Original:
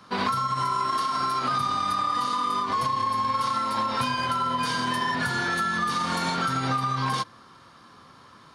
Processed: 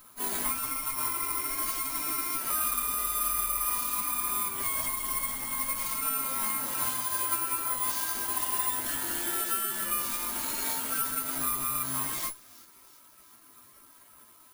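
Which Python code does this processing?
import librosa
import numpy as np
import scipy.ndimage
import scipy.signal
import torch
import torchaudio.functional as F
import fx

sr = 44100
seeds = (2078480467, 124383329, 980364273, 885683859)

y = fx.lower_of_two(x, sr, delay_ms=3.1)
y = fx.hum_notches(y, sr, base_hz=60, count=3)
y = fx.stretch_vocoder_free(y, sr, factor=1.7)
y = fx.echo_wet_highpass(y, sr, ms=355, feedback_pct=57, hz=5100.0, wet_db=-13.5)
y = (np.kron(y[::4], np.eye(4)[0]) * 4)[:len(y)]
y = F.gain(torch.from_numpy(y), -6.0).numpy()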